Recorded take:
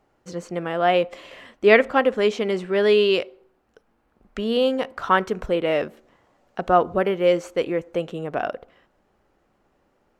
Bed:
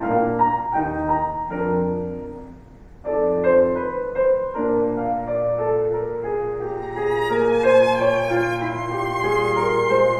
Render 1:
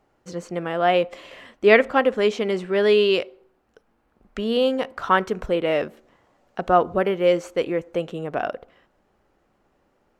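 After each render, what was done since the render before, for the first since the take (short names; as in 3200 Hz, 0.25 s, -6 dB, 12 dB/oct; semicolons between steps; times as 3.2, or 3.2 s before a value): nothing audible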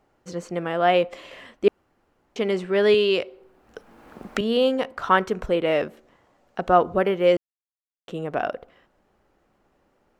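1.68–2.36 room tone; 2.94–4.41 three-band squash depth 70%; 7.37–8.08 mute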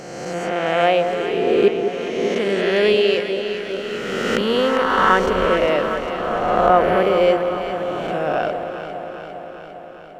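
spectral swells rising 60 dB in 1.97 s; on a send: echo with dull and thin repeats by turns 0.201 s, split 900 Hz, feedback 82%, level -6.5 dB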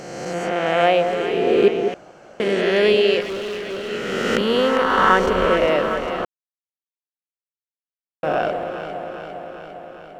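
1.94–2.4 room tone; 3.21–3.89 hard clip -24.5 dBFS; 6.25–8.23 mute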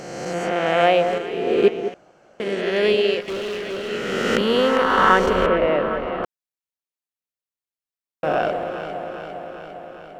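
1.18–3.28 upward expander, over -27 dBFS; 5.46–6.24 air absorption 360 m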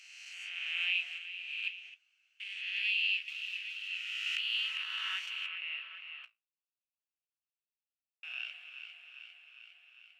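flange 1.5 Hz, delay 9.2 ms, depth 9.3 ms, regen -55%; ladder high-pass 2500 Hz, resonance 80%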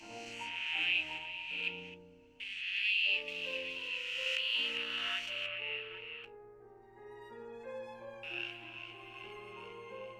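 add bed -30 dB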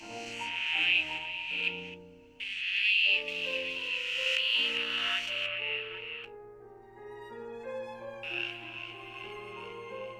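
gain +5.5 dB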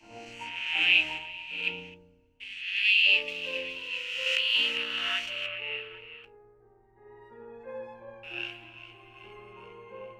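three-band expander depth 70%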